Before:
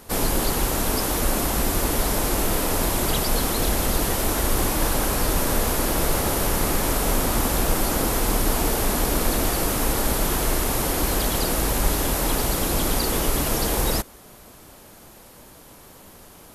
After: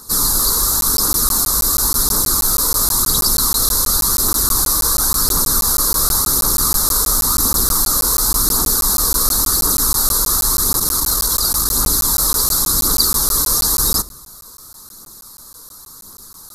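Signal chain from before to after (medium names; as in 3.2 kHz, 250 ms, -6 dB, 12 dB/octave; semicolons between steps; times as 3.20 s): FFT filter 400 Hz 0 dB, 670 Hz -8 dB, 1.2 kHz +11 dB, 2.8 kHz -20 dB, 4 kHz +15 dB; phaser 0.93 Hz, delay 2.1 ms, feedback 34%; on a send at -15 dB: reverberation RT60 0.55 s, pre-delay 4 ms; on the sum: crackling interface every 0.16 s, samples 512, zero, from 0.81 s; 10.78–11.77 s: transformer saturation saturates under 170 Hz; trim -3 dB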